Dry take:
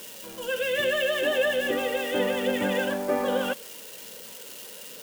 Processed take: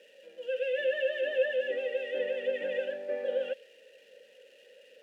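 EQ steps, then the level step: dynamic EQ 3400 Hz, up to +4 dB, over -44 dBFS, Q 0.9; vowel filter e; -1.0 dB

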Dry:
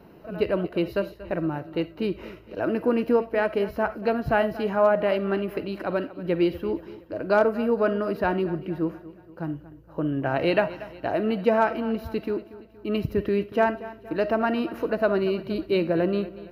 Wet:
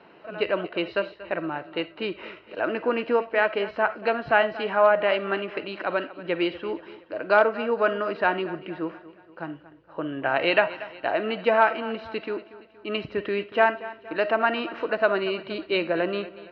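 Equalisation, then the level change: HPF 1300 Hz 6 dB/oct; LPF 3700 Hz 24 dB/oct; +8.0 dB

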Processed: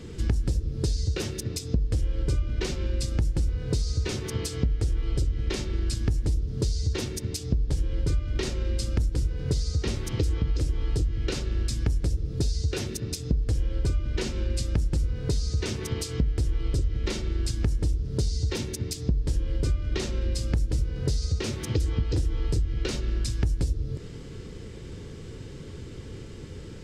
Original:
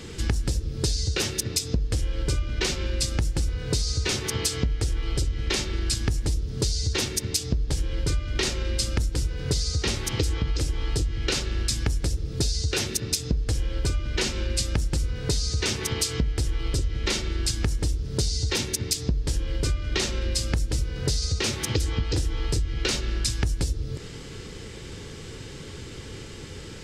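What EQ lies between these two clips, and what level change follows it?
tilt shelf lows +5 dB, about 780 Hz; notch 820 Hz, Q 20; -4.5 dB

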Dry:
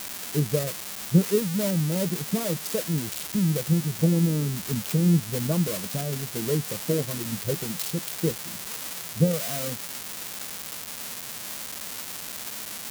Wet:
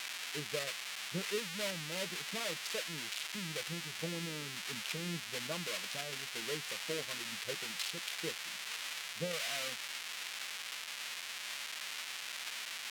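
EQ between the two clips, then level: band-pass 2500 Hz, Q 1.1; +1.5 dB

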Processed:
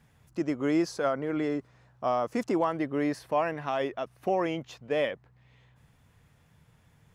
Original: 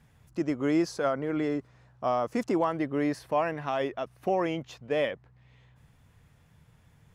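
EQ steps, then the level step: low shelf 110 Hz -4.5 dB; 0.0 dB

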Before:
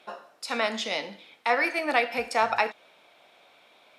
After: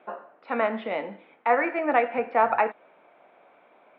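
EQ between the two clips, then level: HPF 180 Hz 12 dB/oct; Bessel low-pass 1700 Hz, order 4; air absorption 360 m; +5.5 dB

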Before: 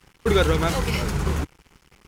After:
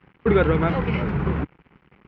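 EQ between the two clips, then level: HPF 90 Hz 6 dB/oct; LPF 2500 Hz 24 dB/oct; bell 190 Hz +5.5 dB 1.7 oct; 0.0 dB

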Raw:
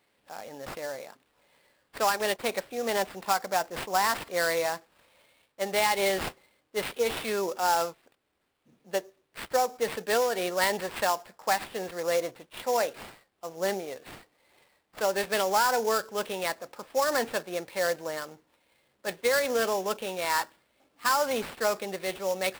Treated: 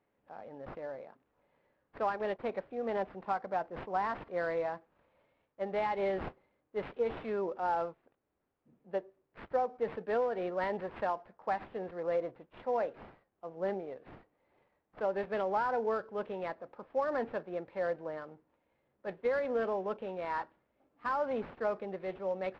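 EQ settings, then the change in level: tape spacing loss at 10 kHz 41 dB; high shelf 3400 Hz -9 dB; -2.5 dB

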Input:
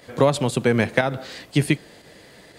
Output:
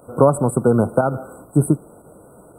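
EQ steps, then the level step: brick-wall FIR band-stop 1500–7700 Hz; +4.0 dB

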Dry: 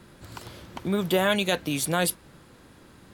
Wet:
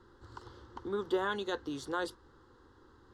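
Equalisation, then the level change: air absorption 160 m; bell 270 Hz -4.5 dB 0.38 oct; fixed phaser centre 640 Hz, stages 6; -4.0 dB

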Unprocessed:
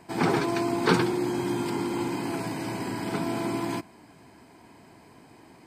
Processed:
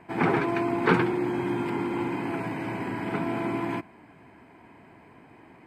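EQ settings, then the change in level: resonant high shelf 3400 Hz -12.5 dB, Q 1.5; 0.0 dB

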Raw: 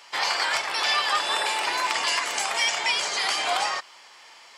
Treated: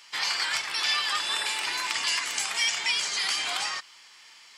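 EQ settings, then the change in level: bell 620 Hz -13.5 dB 1.9 oct; 0.0 dB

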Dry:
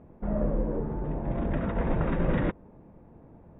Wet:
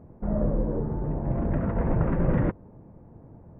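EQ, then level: Gaussian blur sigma 4 samples; bell 110 Hz +7 dB 0.71 oct; +1.5 dB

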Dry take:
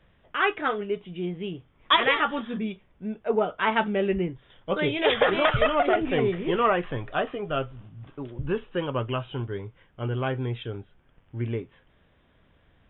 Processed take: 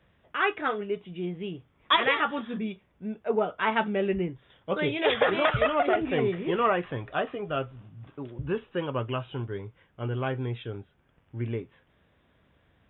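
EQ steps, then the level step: HPF 56 Hz; notch 3100 Hz, Q 27; -2.0 dB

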